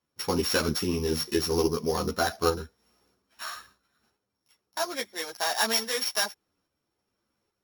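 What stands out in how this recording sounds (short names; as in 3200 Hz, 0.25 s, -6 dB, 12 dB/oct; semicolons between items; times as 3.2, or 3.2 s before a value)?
a buzz of ramps at a fixed pitch in blocks of 8 samples; tremolo saw up 1.2 Hz, depth 40%; a shimmering, thickened sound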